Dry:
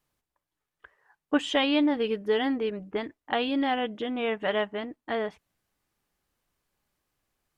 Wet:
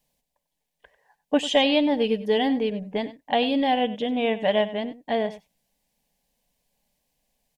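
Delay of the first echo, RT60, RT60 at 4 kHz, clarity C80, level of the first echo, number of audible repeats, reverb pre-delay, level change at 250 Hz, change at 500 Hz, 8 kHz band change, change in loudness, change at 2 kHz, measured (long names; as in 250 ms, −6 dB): 96 ms, no reverb audible, no reverb audible, no reverb audible, −15.5 dB, 1, no reverb audible, +3.5 dB, +5.0 dB, can't be measured, +4.0 dB, +1.5 dB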